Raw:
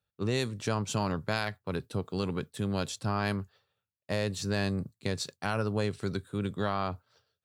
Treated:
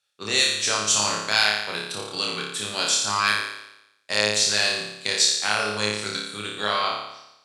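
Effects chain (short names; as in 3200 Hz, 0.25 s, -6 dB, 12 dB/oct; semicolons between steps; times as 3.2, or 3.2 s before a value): weighting filter ITU-R 468; flutter echo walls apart 4.9 m, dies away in 0.86 s; gain +4 dB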